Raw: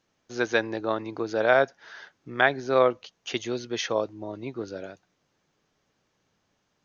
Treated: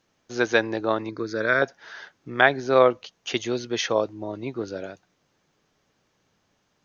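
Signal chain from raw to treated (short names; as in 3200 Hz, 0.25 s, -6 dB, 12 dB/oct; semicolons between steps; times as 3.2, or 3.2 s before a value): 1.09–1.62 fixed phaser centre 2900 Hz, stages 6; gain +3.5 dB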